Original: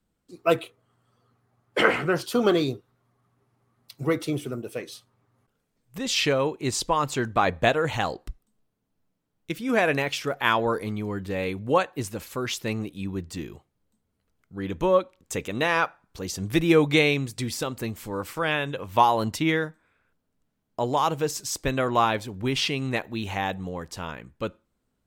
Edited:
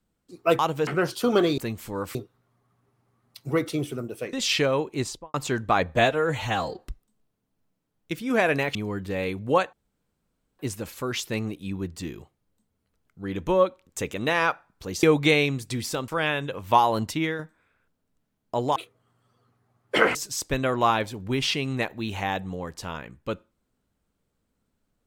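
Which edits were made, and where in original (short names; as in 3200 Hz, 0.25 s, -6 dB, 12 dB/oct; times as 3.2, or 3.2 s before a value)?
0.59–1.98 swap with 21.01–21.29
4.87–6 cut
6.62–7.01 studio fade out
7.62–8.18 stretch 1.5×
10.14–10.95 cut
11.93 insert room tone 0.86 s
16.37–16.71 cut
17.76–18.33 move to 2.69
19.27–19.64 fade out, to -6.5 dB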